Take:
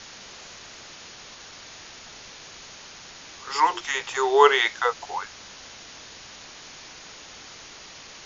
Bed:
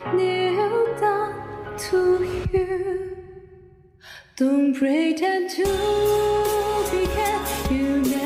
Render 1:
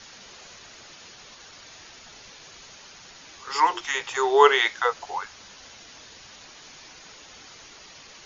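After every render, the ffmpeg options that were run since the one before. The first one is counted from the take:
-af "afftdn=nr=6:nf=-45"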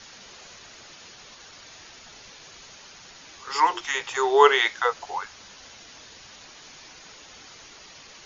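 -af anull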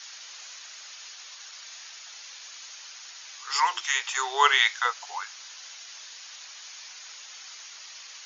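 -af "highpass=1100,highshelf=f=4800:g=8"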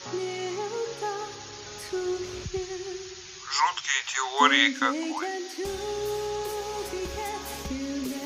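-filter_complex "[1:a]volume=0.282[s0];[0:a][s0]amix=inputs=2:normalize=0"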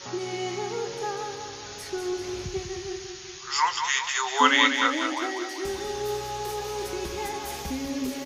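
-filter_complex "[0:a]asplit=2[s0][s1];[s1]adelay=23,volume=0.266[s2];[s0][s2]amix=inputs=2:normalize=0,aecho=1:1:195|390|585|780|975|1170:0.447|0.237|0.125|0.0665|0.0352|0.0187"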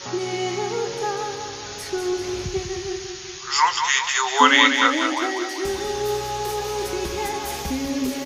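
-af "volume=1.88,alimiter=limit=0.794:level=0:latency=1"

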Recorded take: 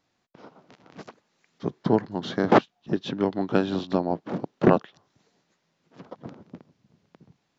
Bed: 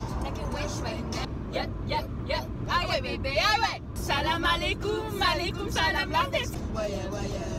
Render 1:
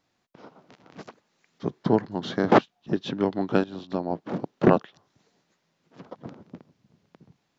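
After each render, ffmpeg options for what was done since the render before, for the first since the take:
-filter_complex "[0:a]asplit=2[s0][s1];[s0]atrim=end=3.64,asetpts=PTS-STARTPTS,afade=t=out:st=3.636:d=0.004:c=hsin:silence=0.177828[s2];[s1]atrim=start=3.64,asetpts=PTS-STARTPTS,afade=t=in:d=0.65:silence=0.177828[s3];[s2][s3]concat=n=2:v=0:a=1"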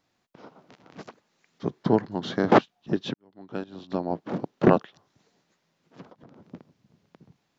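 -filter_complex "[0:a]asettb=1/sr,asplit=3[s0][s1][s2];[s0]atrim=end=6.024[s3];[s1]atrim=start=6.02:end=6.44,asetpts=PTS-STARTPTS,afade=t=in:d=0.004:c=qsin,afade=t=out:st=0.416:d=0.004:c=qsin,acompressor=threshold=0.00501:ratio=12:attack=3.2:release=140:knee=1:detection=peak[s4];[s2]atrim=start=6.436[s5];[s3][s4]acrossfade=d=0.004:c1=hsin:c2=qsin[s6];[s6][s5]acrossfade=d=0.004:c1=qsin:c2=hsin,asplit=2[s7][s8];[s7]atrim=end=3.14,asetpts=PTS-STARTPTS,afade=t=out:st=3.136:d=0.004:c=hsin[s9];[s8]atrim=start=3.14,asetpts=PTS-STARTPTS,afade=t=in:d=0.81:c=qua[s10];[s9][s10]concat=n=2:v=0:a=1"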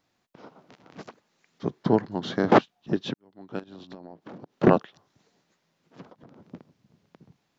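-filter_complex "[0:a]asettb=1/sr,asplit=3[s0][s1][s2];[s0]atrim=end=3.594[s3];[s1]atrim=start=3.59:end=4.56,asetpts=PTS-STARTPTS,afade=t=in:d=0.004:c=qsin,afade=t=out:st=0.966:d=0.004:c=qsin,acompressor=threshold=0.0126:ratio=16:attack=3.2:release=140:knee=1:detection=peak[s4];[s2]atrim=start=4.556[s5];[s3][s4]acrossfade=d=0.004:c1=hsin:c2=qsin[s6];[s6][s5]acrossfade=d=0.004:c1=qsin:c2=hsin"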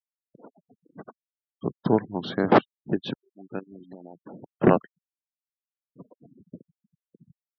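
-af "afftfilt=real='re*gte(hypot(re,im),0.0126)':imag='im*gte(hypot(re,im),0.0126)':win_size=1024:overlap=0.75"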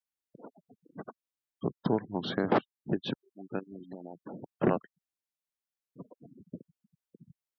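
-af "acompressor=threshold=0.0355:ratio=2"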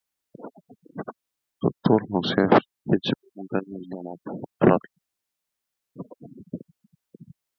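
-af "volume=2.99"

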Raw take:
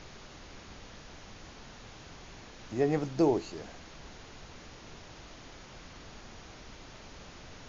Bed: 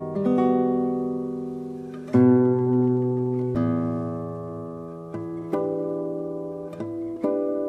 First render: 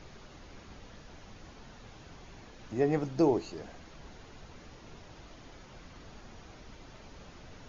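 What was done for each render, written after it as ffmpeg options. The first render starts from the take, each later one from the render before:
-af "afftdn=nr=6:nf=-51"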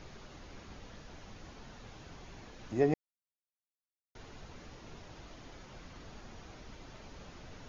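-filter_complex "[0:a]asplit=3[s0][s1][s2];[s0]atrim=end=2.94,asetpts=PTS-STARTPTS,afade=t=out:st=2.936:d=0.004:c=hsin[s3];[s1]atrim=start=2.94:end=4.15,asetpts=PTS-STARTPTS,volume=0[s4];[s2]atrim=start=4.15,asetpts=PTS-STARTPTS,afade=t=in:d=0.004:c=hsin[s5];[s3][s4][s5]concat=n=3:v=0:a=1"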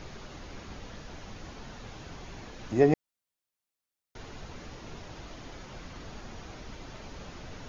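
-af "volume=2.11"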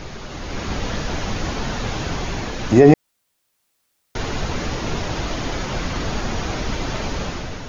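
-af "dynaudnorm=f=220:g=5:m=2.82,alimiter=level_in=3.35:limit=0.891:release=50:level=0:latency=1"

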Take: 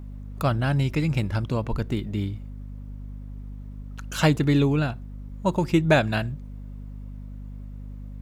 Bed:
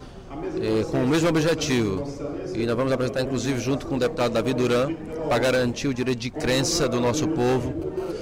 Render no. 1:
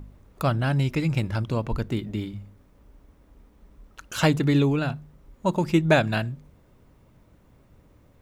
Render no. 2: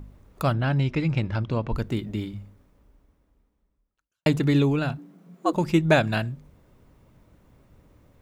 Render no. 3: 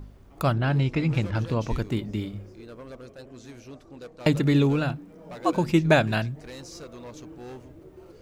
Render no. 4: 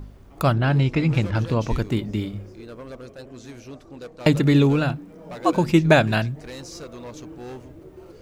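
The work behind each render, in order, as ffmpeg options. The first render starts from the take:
-af "bandreject=f=50:t=h:w=4,bandreject=f=100:t=h:w=4,bandreject=f=150:t=h:w=4,bandreject=f=200:t=h:w=4,bandreject=f=250:t=h:w=4"
-filter_complex "[0:a]asettb=1/sr,asplit=3[s0][s1][s2];[s0]atrim=end=0.534[s3];[s1]atrim=start=0.53:end=1.73,asetpts=PTS-STARTPTS,afade=t=in:d=0.004:c=qsin,afade=t=out:st=1.196:d=0.004:c=qsin,lowpass=4300[s4];[s2]atrim=start=1.726[s5];[s3][s4]acrossfade=d=0.004:c1=hsin:c2=qsin[s6];[s6][s5]acrossfade=d=0.004:c1=qsin:c2=hsin,asplit=3[s7][s8][s9];[s7]afade=t=out:st=4.97:d=0.02[s10];[s8]afreqshift=140,afade=t=in:st=4.97:d=0.02,afade=t=out:st=5.52:d=0.02[s11];[s9]afade=t=in:st=5.52:d=0.02[s12];[s10][s11][s12]amix=inputs=3:normalize=0,asplit=2[s13][s14];[s13]atrim=end=4.26,asetpts=PTS-STARTPTS,afade=t=out:st=2.4:d=1.86:c=qua[s15];[s14]atrim=start=4.26,asetpts=PTS-STARTPTS,afade=t=in:d=0.004:c=hsin[s16];[s15][s16]concat=n=2:v=0:a=1"
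-filter_complex "[1:a]volume=0.106[s0];[0:a][s0]amix=inputs=2:normalize=0"
-af "volume=1.58,alimiter=limit=0.794:level=0:latency=1"

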